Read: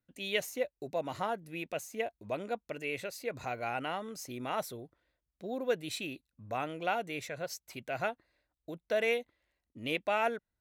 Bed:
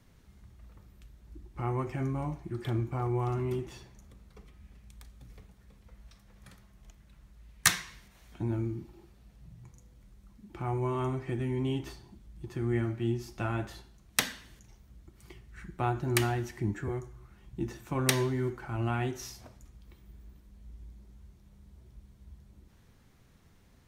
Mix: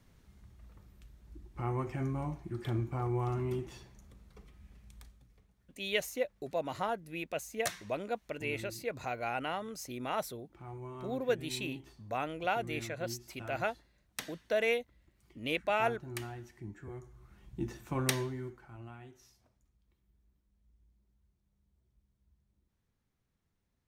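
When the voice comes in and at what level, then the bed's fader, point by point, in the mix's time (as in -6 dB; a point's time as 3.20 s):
5.60 s, 0.0 dB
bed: 5.05 s -2.5 dB
5.29 s -13.5 dB
16.77 s -13.5 dB
17.35 s -2.5 dB
17.98 s -2.5 dB
19.01 s -20 dB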